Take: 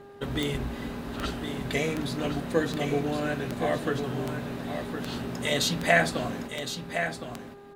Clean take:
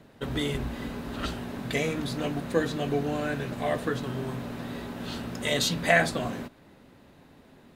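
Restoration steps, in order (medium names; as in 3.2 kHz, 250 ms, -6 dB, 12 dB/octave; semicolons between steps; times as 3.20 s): de-click; de-hum 402.7 Hz, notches 4; inverse comb 1063 ms -8 dB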